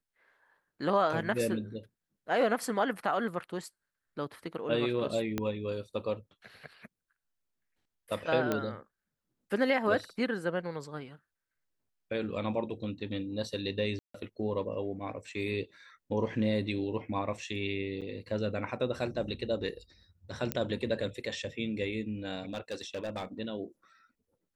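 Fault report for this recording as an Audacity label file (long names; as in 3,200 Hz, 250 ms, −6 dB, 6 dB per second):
5.380000	5.380000	click −17 dBFS
8.520000	8.520000	click −16 dBFS
13.990000	14.140000	drop-out 154 ms
18.010000	18.020000	drop-out 7.5 ms
20.520000	20.520000	click −14 dBFS
22.490000	23.250000	clipping −31.5 dBFS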